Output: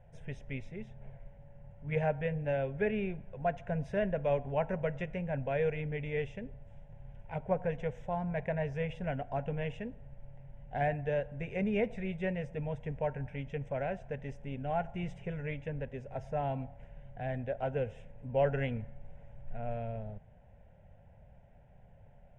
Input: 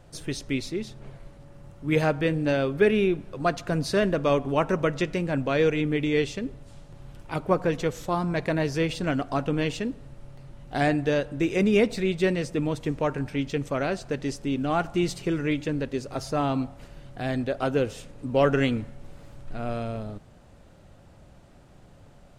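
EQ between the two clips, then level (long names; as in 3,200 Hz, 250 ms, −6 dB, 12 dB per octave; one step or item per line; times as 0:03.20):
head-to-tape spacing loss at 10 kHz 28 dB
phaser with its sweep stopped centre 1,200 Hz, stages 6
−3.5 dB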